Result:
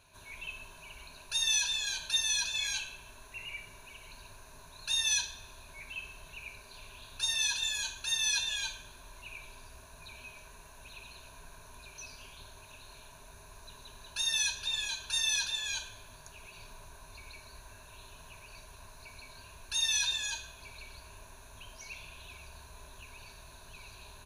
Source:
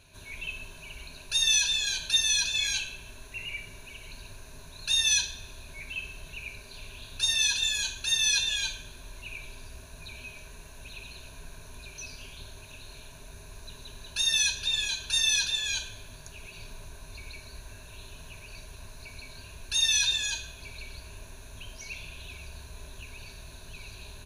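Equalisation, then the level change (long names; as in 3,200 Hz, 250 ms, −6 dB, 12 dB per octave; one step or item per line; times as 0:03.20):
parametric band 1,000 Hz +10 dB 1.4 octaves
high-shelf EQ 4,900 Hz +5.5 dB
−8.5 dB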